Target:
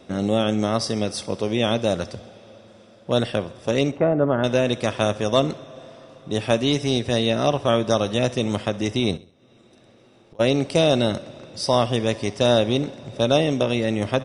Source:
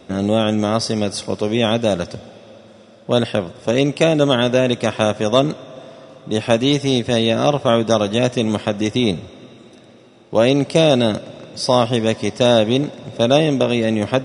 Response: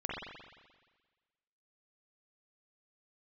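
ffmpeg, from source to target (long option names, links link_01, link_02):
-filter_complex "[0:a]asettb=1/sr,asplit=3[link_01][link_02][link_03];[link_01]atrim=end=3.914[link_04];[link_02]atrim=start=3.91:end=4.44,asetpts=PTS-STARTPTS,afade=type=in:duration=0.004:curve=qsin,afade=type=out:start_time=0.526:duration=0.004:curve=qsin,lowpass=frequency=1600:width=0.5412,lowpass=frequency=1600:width=1.3066[link_05];[link_03]atrim=start=4.436[link_06];[link_04][link_05]acrossfade=duration=0.004:curve1=hsin:curve2=qsin[link_07];[link_07][link_06]acrossfade=duration=0.004:curve1=qsin:curve2=hsin,asplit=2[link_08][link_09];[link_09]adelay=160,highpass=300,lowpass=3400,asoftclip=type=hard:threshold=-10dB,volume=-28dB[link_10];[link_08][link_10]amix=inputs=2:normalize=0,asplit=3[link_11][link_12][link_13];[link_11]afade=type=out:start_time=9.16:duration=0.02[link_14];[link_12]acompressor=threshold=-44dB:ratio=20,afade=type=in:start_time=9.16:duration=0.02,afade=type=out:start_time=10.39:duration=0.02[link_15];[link_13]afade=type=in:start_time=10.39:duration=0.02[link_16];[link_14][link_15][link_16]amix=inputs=3:normalize=0,asplit=2[link_17][link_18];[link_18]aecho=0:1:66|132|198:0.1|0.039|0.0152[link_19];[link_17][link_19]amix=inputs=2:normalize=0,asubboost=boost=2:cutoff=100,volume=-4dB"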